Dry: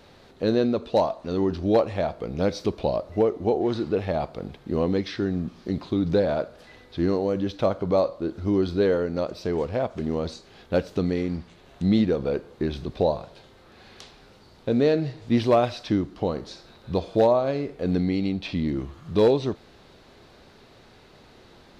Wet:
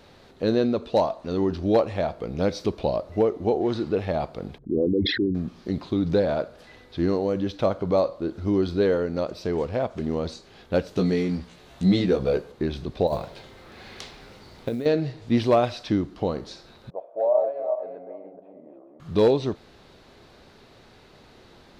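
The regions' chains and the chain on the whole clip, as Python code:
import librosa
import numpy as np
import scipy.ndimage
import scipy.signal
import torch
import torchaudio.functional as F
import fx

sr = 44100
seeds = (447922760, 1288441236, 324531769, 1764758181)

y = fx.chain(x, sr, fx.envelope_sharpen(power=3.0),
    fx.dynamic_eq(hz=320.0, q=5.0, threshold_db=-41.0, ratio=4.0, max_db=4),
    fx.sustainer(db_per_s=43.0), at=(4.58, 5.35))
y = fx.chain(y, sr, fx.high_shelf(hz=4100.0, db=5.5),
    fx.doubler(ms=16.0, db=-3.0), at=(10.96, 12.52))
y = fx.chain(y, sr, fx.peak_eq(hz=2100.0, db=4.5, octaves=0.26),
    fx.over_compress(threshold_db=-27.0, ratio=-1.0),
    fx.quant_float(bits=4), at=(13.07, 14.86))
y = fx.chain(y, sr, fx.reverse_delay_fb(ms=213, feedback_pct=41, wet_db=-3.0),
    fx.ladder_bandpass(hz=670.0, resonance_pct=70),
    fx.env_lowpass(base_hz=670.0, full_db=-22.5), at=(16.9, 19.0))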